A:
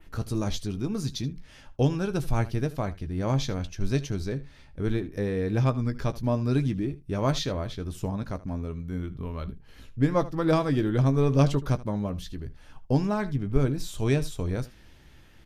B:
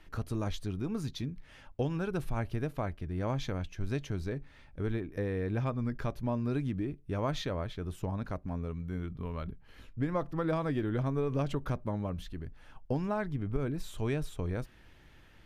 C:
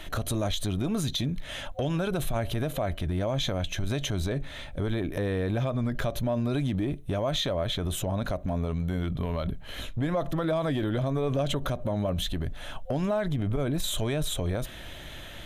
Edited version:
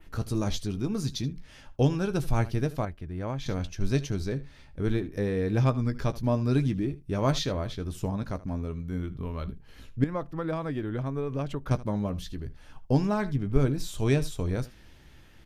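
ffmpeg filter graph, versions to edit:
ffmpeg -i take0.wav -i take1.wav -filter_complex "[1:a]asplit=2[link_01][link_02];[0:a]asplit=3[link_03][link_04][link_05];[link_03]atrim=end=2.852[link_06];[link_01]atrim=start=2.848:end=3.462[link_07];[link_04]atrim=start=3.458:end=10.042[link_08];[link_02]atrim=start=10.038:end=11.712[link_09];[link_05]atrim=start=11.708[link_10];[link_06][link_07]acrossfade=duration=0.004:curve1=hsin:curve2=hsin[link_11];[link_11][link_08]acrossfade=duration=0.004:curve1=hsin:curve2=hsin[link_12];[link_12][link_09]acrossfade=duration=0.004:curve1=hsin:curve2=hsin[link_13];[link_13][link_10]acrossfade=duration=0.004:curve1=hsin:curve2=hsin" out.wav

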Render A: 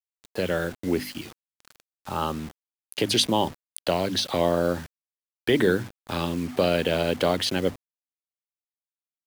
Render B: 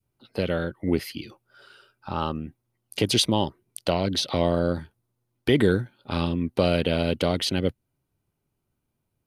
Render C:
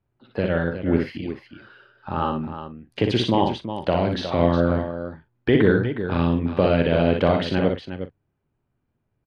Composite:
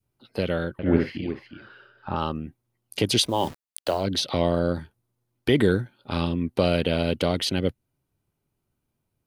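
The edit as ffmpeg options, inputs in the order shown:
ffmpeg -i take0.wav -i take1.wav -i take2.wav -filter_complex "[1:a]asplit=3[link_01][link_02][link_03];[link_01]atrim=end=0.792[link_04];[2:a]atrim=start=0.788:end=2.162[link_05];[link_02]atrim=start=2.158:end=3.45[link_06];[0:a]atrim=start=3.21:end=4.08[link_07];[link_03]atrim=start=3.84[link_08];[link_04][link_05]acrossfade=duration=0.004:curve1=hsin:curve2=hsin[link_09];[link_09][link_06]acrossfade=duration=0.004:curve1=hsin:curve2=hsin[link_10];[link_10][link_07]acrossfade=duration=0.24:curve1=tri:curve2=tri[link_11];[link_11][link_08]acrossfade=duration=0.24:curve1=tri:curve2=tri" out.wav

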